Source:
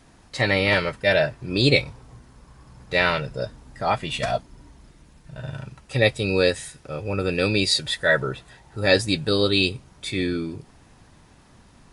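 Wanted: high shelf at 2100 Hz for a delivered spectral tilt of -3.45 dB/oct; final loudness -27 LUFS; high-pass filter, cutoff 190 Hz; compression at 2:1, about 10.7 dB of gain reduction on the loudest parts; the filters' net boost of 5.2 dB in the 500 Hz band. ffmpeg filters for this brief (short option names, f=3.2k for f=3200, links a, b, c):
-af "highpass=190,equalizer=f=500:t=o:g=6,highshelf=f=2.1k:g=4,acompressor=threshold=-29dB:ratio=2,volume=1dB"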